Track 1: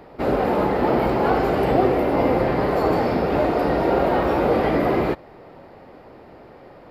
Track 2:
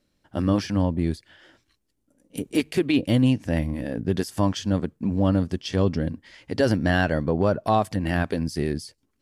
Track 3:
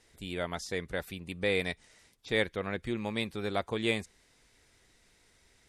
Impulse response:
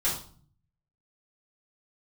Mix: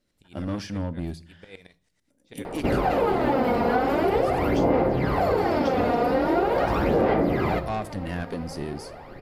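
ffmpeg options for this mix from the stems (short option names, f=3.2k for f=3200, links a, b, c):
-filter_complex "[0:a]aphaser=in_gain=1:out_gain=1:delay=4.2:decay=0.63:speed=0.43:type=sinusoidal,adelay=2450,volume=1dB,asplit=2[a][b];[b]volume=-18dB[c];[1:a]asoftclip=type=tanh:threshold=-19dB,volume=-5dB,asplit=2[d][e];[e]volume=-23.5dB[f];[2:a]aeval=exprs='val(0)*pow(10,-22*if(lt(mod(-9*n/s,1),2*abs(-9)/1000),1-mod(-9*n/s,1)/(2*abs(-9)/1000),(mod(-9*n/s,1)-2*abs(-9)/1000)/(1-2*abs(-9)/1000))/20)':c=same,volume=-10dB,asplit=2[g][h];[h]volume=-22.5dB[i];[3:a]atrim=start_sample=2205[j];[c][f][i]amix=inputs=3:normalize=0[k];[k][j]afir=irnorm=-1:irlink=0[l];[a][d][g][l]amix=inputs=4:normalize=0,acompressor=threshold=-20dB:ratio=4"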